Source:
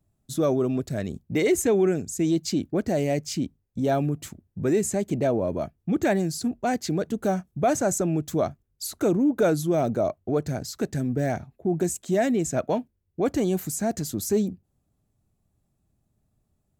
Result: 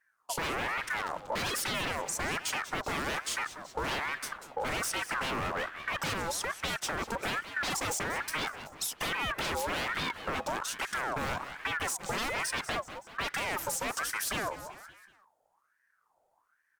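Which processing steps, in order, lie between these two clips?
wave folding −26.5 dBFS
harmonic generator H 7 −23 dB, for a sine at −26.5 dBFS
on a send: echo with shifted repeats 189 ms, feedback 45%, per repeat −43 Hz, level −15 dB
on the sum: downward compressor 3 to 1, threshold −35 dBFS, peak gain reduction 5.5 dB
ring modulator whose carrier an LFO sweeps 1,200 Hz, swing 45%, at 1.2 Hz
level +6 dB

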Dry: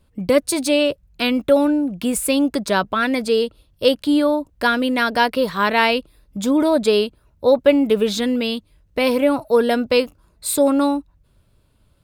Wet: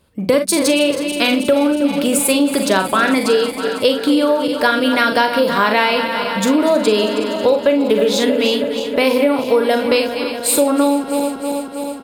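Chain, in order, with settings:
feedback delay that plays each chunk backwards 160 ms, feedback 83%, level −12.5 dB
high-pass filter 160 Hz 6 dB per octave
mains-hum notches 60/120/180/240 Hz
ambience of single reflections 42 ms −7 dB, 61 ms −16 dB
downward compressor, threshold −17 dBFS, peak gain reduction 9.5 dB
level +6.5 dB

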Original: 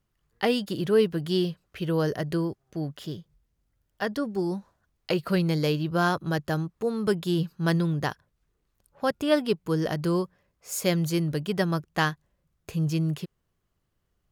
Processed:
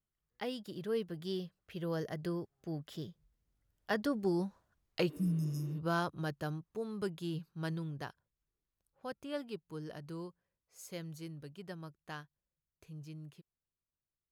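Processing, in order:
source passing by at 0:04.22, 12 m/s, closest 14 metres
healed spectral selection 0:05.12–0:05.75, 220–5,000 Hz after
level −4.5 dB

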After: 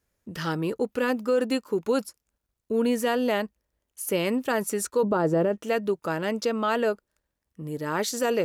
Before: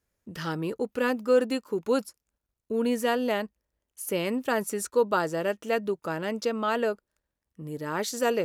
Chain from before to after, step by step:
0:05.03–0:05.58: tilt shelving filter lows +9.5 dB, about 1,300 Hz
brickwall limiter −18 dBFS, peak gain reduction 10 dB
level +3 dB

